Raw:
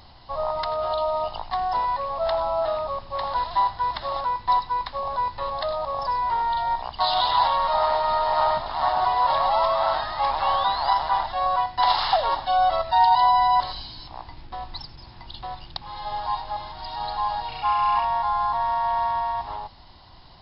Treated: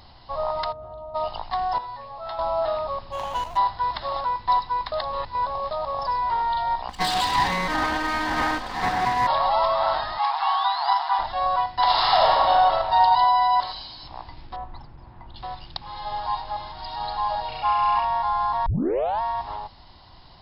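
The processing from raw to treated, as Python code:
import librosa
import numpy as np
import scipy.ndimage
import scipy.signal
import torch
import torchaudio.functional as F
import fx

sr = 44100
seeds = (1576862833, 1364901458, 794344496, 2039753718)

y = fx.bandpass_q(x, sr, hz=100.0, q=0.68, at=(0.71, 1.14), fade=0.02)
y = fx.comb_fb(y, sr, f0_hz=120.0, decay_s=0.2, harmonics='all', damping=0.0, mix_pct=90, at=(1.78, 2.39))
y = fx.median_filter(y, sr, points=25, at=(3.11, 3.56), fade=0.02)
y = fx.lower_of_two(y, sr, delay_ms=3.9, at=(6.88, 9.26), fade=0.02)
y = fx.brickwall_highpass(y, sr, low_hz=660.0, at=(10.18, 11.19))
y = fx.reverb_throw(y, sr, start_s=11.87, length_s=0.63, rt60_s=2.7, drr_db=-3.0)
y = fx.low_shelf(y, sr, hz=250.0, db=-8.5, at=(13.24, 14.03))
y = fx.lowpass(y, sr, hz=1500.0, slope=12, at=(14.56, 15.36))
y = fx.peak_eq(y, sr, hz=590.0, db=14.0, octaves=0.21, at=(17.29, 17.94))
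y = fx.edit(y, sr, fx.reverse_span(start_s=4.92, length_s=0.79),
    fx.tape_start(start_s=18.66, length_s=0.55), tone=tone)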